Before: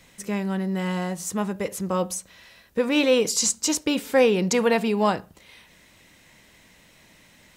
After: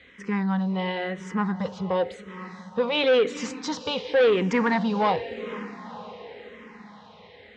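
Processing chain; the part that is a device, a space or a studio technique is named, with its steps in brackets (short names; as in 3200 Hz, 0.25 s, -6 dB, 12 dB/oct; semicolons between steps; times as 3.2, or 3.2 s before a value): diffused feedback echo 0.469 s, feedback 58%, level -16 dB; barber-pole phaser into a guitar amplifier (endless phaser -0.93 Hz; soft clip -20 dBFS, distortion -11 dB; speaker cabinet 97–3600 Hz, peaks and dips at 130 Hz -9 dB, 210 Hz -5 dB, 330 Hz -10 dB, 620 Hz -8 dB, 1400 Hz -3 dB, 2600 Hz -7 dB); gain +8.5 dB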